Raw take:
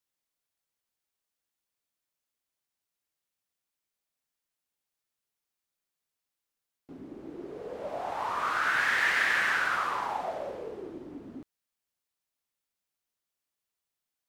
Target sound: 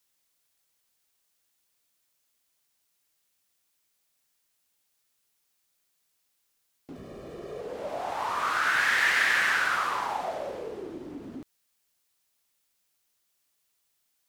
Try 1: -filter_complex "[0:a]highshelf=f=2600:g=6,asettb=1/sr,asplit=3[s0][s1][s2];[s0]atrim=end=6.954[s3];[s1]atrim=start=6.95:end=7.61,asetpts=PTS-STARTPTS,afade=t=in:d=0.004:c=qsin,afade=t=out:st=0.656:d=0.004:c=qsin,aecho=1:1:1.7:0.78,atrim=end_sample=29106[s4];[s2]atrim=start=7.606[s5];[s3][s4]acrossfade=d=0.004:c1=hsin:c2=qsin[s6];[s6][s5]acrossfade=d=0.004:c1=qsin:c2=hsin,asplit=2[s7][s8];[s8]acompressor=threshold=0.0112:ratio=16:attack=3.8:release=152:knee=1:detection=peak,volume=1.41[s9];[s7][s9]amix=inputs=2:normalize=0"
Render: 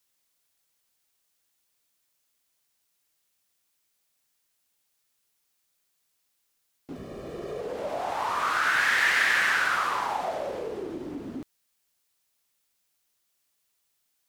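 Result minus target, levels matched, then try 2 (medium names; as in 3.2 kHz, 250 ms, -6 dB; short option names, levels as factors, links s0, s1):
compression: peak gain reduction -10.5 dB
-filter_complex "[0:a]highshelf=f=2600:g=6,asettb=1/sr,asplit=3[s0][s1][s2];[s0]atrim=end=6.954[s3];[s1]atrim=start=6.95:end=7.61,asetpts=PTS-STARTPTS,afade=t=in:d=0.004:c=qsin,afade=t=out:st=0.656:d=0.004:c=qsin,aecho=1:1:1.7:0.78,atrim=end_sample=29106[s4];[s2]atrim=start=7.606[s5];[s3][s4]acrossfade=d=0.004:c1=hsin:c2=qsin[s6];[s6][s5]acrossfade=d=0.004:c1=qsin:c2=hsin,asplit=2[s7][s8];[s8]acompressor=threshold=0.00316:ratio=16:attack=3.8:release=152:knee=1:detection=peak,volume=1.41[s9];[s7][s9]amix=inputs=2:normalize=0"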